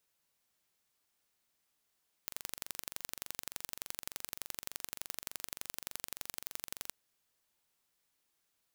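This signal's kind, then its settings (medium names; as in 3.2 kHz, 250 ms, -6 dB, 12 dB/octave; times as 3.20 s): pulse train 23.4 per s, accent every 2, -10.5 dBFS 4.64 s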